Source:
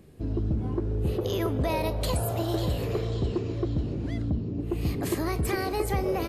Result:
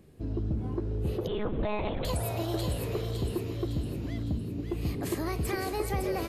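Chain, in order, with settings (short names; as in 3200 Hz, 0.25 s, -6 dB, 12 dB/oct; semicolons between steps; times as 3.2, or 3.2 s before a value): thin delay 0.558 s, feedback 49%, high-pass 1700 Hz, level -5.5 dB; 1.27–2.05 monotone LPC vocoder at 8 kHz 210 Hz; gain -3.5 dB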